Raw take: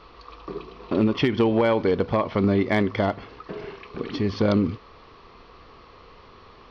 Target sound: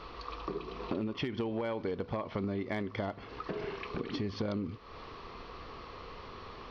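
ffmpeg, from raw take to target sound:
-af "acompressor=threshold=0.0158:ratio=5,volume=1.26"

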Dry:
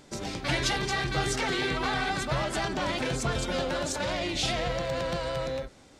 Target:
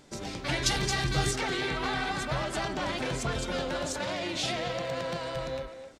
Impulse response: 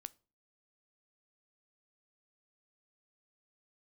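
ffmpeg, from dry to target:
-filter_complex "[0:a]asettb=1/sr,asplit=3[s0][s1][s2];[s0]atrim=end=0.664[s3];[s1]atrim=start=0.66:end=1.31,asetpts=PTS-STARTPTS,afade=t=in:d=0.004:c=qsin,afade=t=out:st=0.646:d=0.004:c=qsin,bass=f=250:g=6,treble=f=4000:g=8[s4];[s2]atrim=start=1.306[s5];[s3][s4]acrossfade=d=0.004:c1=hsin:c2=qsin[s6];[s6][s5]acrossfade=d=0.004:c1=qsin:c2=hsin,asettb=1/sr,asplit=3[s7][s8][s9];[s7]atrim=end=4.004[s10];[s8]atrim=start=4:end=5.35,asetpts=PTS-STARTPTS,afade=t=in:d=0.004:c=qsin,afade=t=out:st=1.346:d=0.004:c=qsin,highpass=110[s11];[s9]atrim=start=5.346[s12];[s10][s11]acrossfade=d=0.004:c1=hsin:c2=qsin[s13];[s13][s12]acrossfade=d=0.004:c1=qsin:c2=hsin,asplit=2[s14][s15];[s15]adelay=260,highpass=300,lowpass=3400,asoftclip=type=hard:threshold=0.0841,volume=0.355[s16];[s14][s16]amix=inputs=2:normalize=0,volume=0.75"

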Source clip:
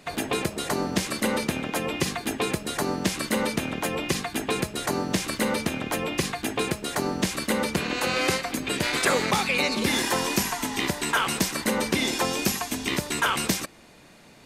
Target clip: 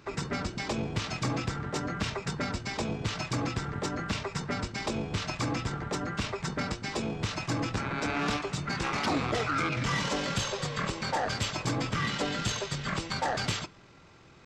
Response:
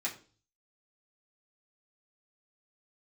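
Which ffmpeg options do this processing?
-filter_complex "[0:a]asoftclip=type=tanh:threshold=0.119,asetrate=24750,aresample=44100,atempo=1.7818,asplit=2[s0][s1];[1:a]atrim=start_sample=2205[s2];[s1][s2]afir=irnorm=-1:irlink=0,volume=0.168[s3];[s0][s3]amix=inputs=2:normalize=0,volume=0.668"

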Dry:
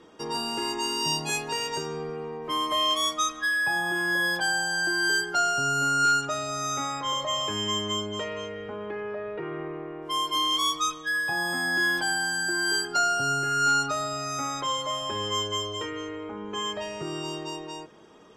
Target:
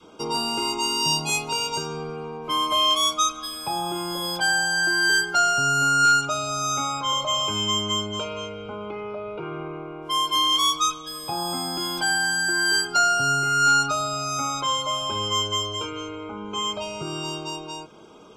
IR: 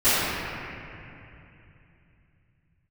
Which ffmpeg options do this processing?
-af "asuperstop=centerf=1800:order=20:qfactor=4.7,adynamicequalizer=threshold=0.00562:dfrequency=410:dqfactor=0.95:tfrequency=410:tqfactor=0.95:attack=5:release=100:ratio=0.375:range=2.5:mode=cutabove:tftype=bell,volume=1.78"

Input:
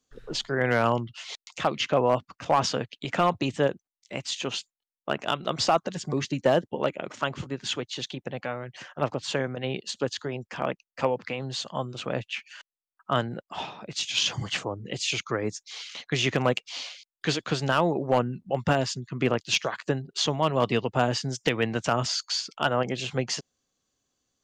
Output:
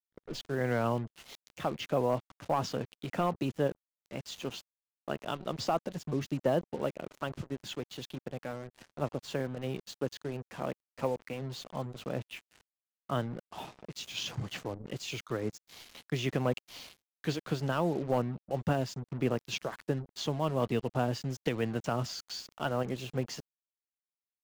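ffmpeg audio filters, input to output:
-af "acrusher=bits=5:mix=0:aa=0.5,tiltshelf=f=780:g=4.5,volume=0.398"

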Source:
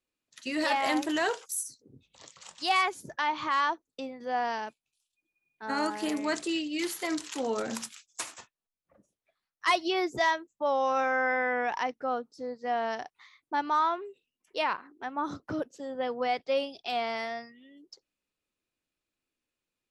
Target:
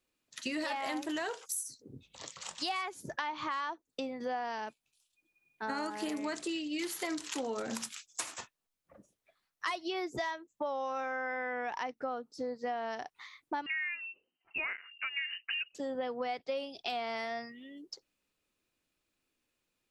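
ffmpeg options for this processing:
-filter_complex "[0:a]acompressor=threshold=0.0112:ratio=6,asettb=1/sr,asplit=3[s0][s1][s2];[s0]atrim=end=13.664[s3];[s1]atrim=start=13.66:end=15.75,asetpts=PTS-STARTPTS,afade=t=in:d=0.004:c=qsin,afade=t=out:st=2.086:d=0.004:c=qsin,lowpass=f=2600:t=q:w=0.5098,lowpass=f=2600:t=q:w=0.6013,lowpass=f=2600:t=q:w=0.9,lowpass=f=2600:t=q:w=2.563,afreqshift=-3100[s4];[s2]atrim=start=15.746[s5];[s3][s4]acrossfade=d=0.004:c1=hsin:c2=qsin[s6];[s6][s5]acrossfade=d=0.004:c1=qsin:c2=hsin,volume=1.78"

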